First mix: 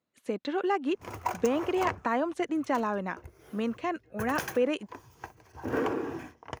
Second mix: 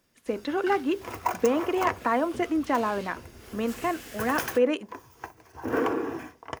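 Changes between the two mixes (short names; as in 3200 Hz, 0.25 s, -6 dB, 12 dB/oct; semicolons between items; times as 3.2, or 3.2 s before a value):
first sound: unmuted; second sound: add high shelf 10000 Hz +7 dB; reverb: on, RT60 0.30 s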